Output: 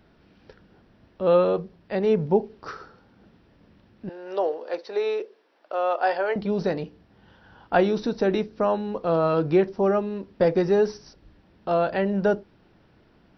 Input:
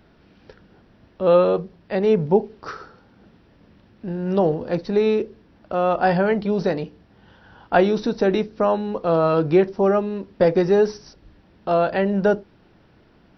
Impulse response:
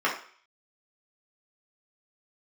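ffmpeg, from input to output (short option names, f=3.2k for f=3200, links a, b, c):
-filter_complex "[0:a]asettb=1/sr,asplit=3[a][b][c];[a]atrim=end=4.094[d];[b]atrim=start=4.09:end=6.36,asetpts=PTS-STARTPTS,afade=t=in:d=0.004:c=qsin,afade=t=out:st=2.266:d=0.004:c=qsin,highpass=f=420:w=0.5412,highpass=f=420:w=1.3066[e];[c]atrim=start=6.356[f];[d][e]acrossfade=d=0.004:c1=hsin:c2=qsin[g];[g][f]acrossfade=d=0.004:c1=qsin:c2=hsin,volume=-3.5dB"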